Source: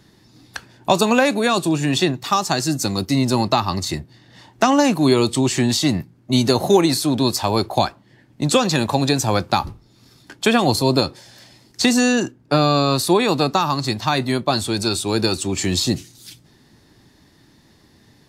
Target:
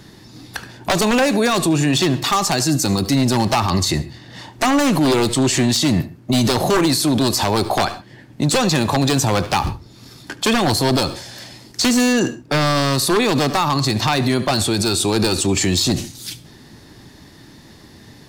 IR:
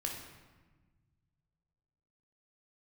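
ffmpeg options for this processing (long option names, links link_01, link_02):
-filter_complex "[0:a]aeval=exprs='0.266*(abs(mod(val(0)/0.266+3,4)-2)-1)':channel_layout=same,asplit=2[link_01][link_02];[1:a]atrim=start_sample=2205,atrim=end_sample=3969,adelay=72[link_03];[link_02][link_03]afir=irnorm=-1:irlink=0,volume=-19.5dB[link_04];[link_01][link_04]amix=inputs=2:normalize=0,alimiter=level_in=18dB:limit=-1dB:release=50:level=0:latency=1,volume=-8.5dB"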